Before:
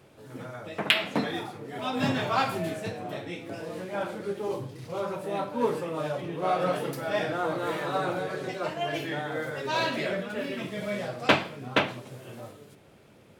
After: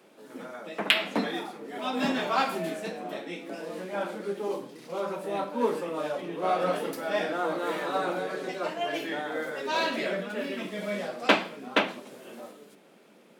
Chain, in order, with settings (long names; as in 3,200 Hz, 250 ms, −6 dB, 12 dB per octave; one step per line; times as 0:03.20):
Butterworth high-pass 180 Hz 48 dB per octave